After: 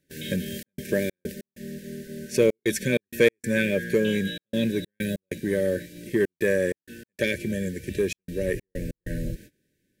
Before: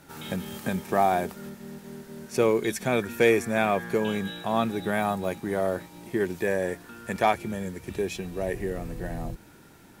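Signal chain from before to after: FFT band-reject 610–1500 Hz; gate -46 dBFS, range -24 dB; trance gate "xxxx.xx.x.xx" 96 bpm -60 dB; in parallel at -4 dB: saturation -19 dBFS, distortion -13 dB

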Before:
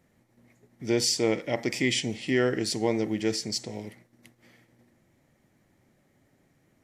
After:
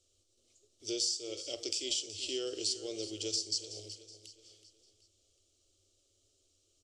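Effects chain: FFT filter 100 Hz 0 dB, 150 Hz -30 dB, 390 Hz -5 dB, 840 Hz -8 dB, 1.2 kHz 0 dB, 1.9 kHz -26 dB, 2.9 kHz +6 dB, 4.9 kHz +11 dB, 8.1 kHz +11 dB, 13 kHz -14 dB; compression 6:1, threshold -28 dBFS, peak gain reduction 15.5 dB; static phaser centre 390 Hz, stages 4; feedback delay 374 ms, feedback 43%, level -13.5 dB; reverberation RT60 0.40 s, pre-delay 3 ms, DRR 13 dB; trim -3.5 dB

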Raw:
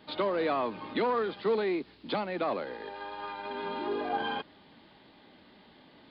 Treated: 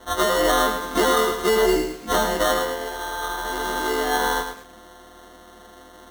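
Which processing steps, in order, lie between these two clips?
partials quantised in pitch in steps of 3 st; high-pass 170 Hz 12 dB/octave; sample-and-hold 18×; 1.59–2.30 s: doubling 32 ms -5.5 dB; bit-crushed delay 107 ms, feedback 35%, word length 8-bit, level -6.5 dB; trim +8 dB

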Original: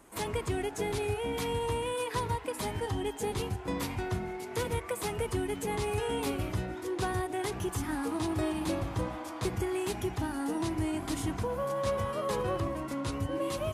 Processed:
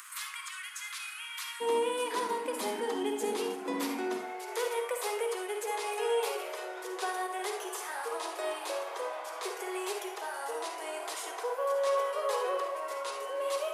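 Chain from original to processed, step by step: steep high-pass 1.1 kHz 72 dB/octave, from 1.60 s 220 Hz, from 4.17 s 400 Hz; upward compressor, threshold -38 dBFS; reverberation RT60 0.50 s, pre-delay 43 ms, DRR 3.5 dB

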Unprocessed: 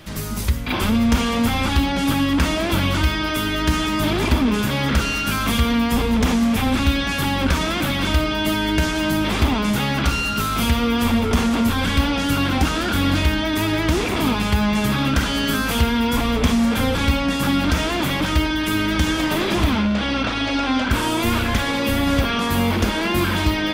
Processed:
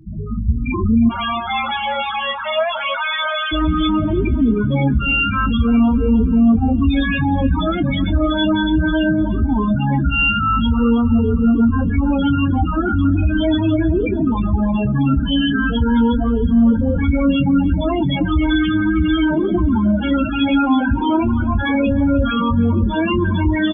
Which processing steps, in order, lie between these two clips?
1.09–3.52 s: steep high-pass 550 Hz 96 dB/octave; level rider gain up to 5.5 dB; peak limiter -9 dBFS, peak gain reduction 6.5 dB; companded quantiser 4-bit; loudest bins only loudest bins 8; doubling 22 ms -13 dB; feedback echo behind a low-pass 311 ms, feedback 56%, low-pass 3 kHz, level -17.5 dB; trim +3 dB

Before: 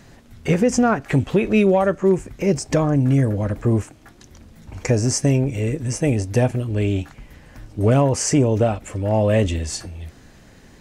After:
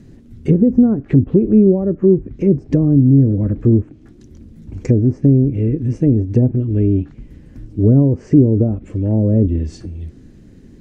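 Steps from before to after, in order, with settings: low-pass that closes with the level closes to 680 Hz, closed at -14 dBFS; resonant low shelf 500 Hz +14 dB, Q 1.5; trim -9 dB

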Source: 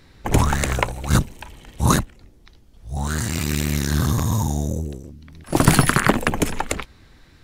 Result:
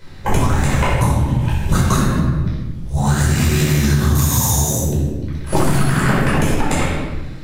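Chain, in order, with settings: 1.01–1.90 s: reverse; 4.15–4.83 s: tilt EQ +4 dB/octave; simulated room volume 620 m³, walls mixed, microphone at 4.9 m; compression 10:1, threshold -11 dBFS, peak gain reduction 15.5 dB

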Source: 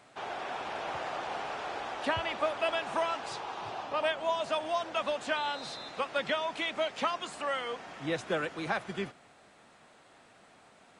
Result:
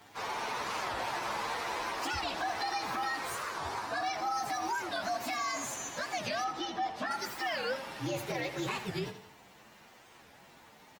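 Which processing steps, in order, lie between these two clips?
frequency axis rescaled in octaves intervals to 120%; 6.44–7.11 s: low-pass 1.5 kHz 6 dB/octave; peak limiter -32 dBFS, peak gain reduction 10.5 dB; on a send: feedback delay 84 ms, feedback 45%, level -11.5 dB; on the sum: warped record 45 rpm, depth 250 cents; trim +6 dB

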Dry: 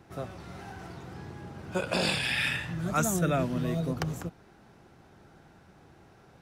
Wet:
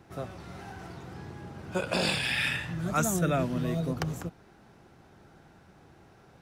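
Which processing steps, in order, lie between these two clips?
1.93–2.45 s: crackle 460 per s -45 dBFS

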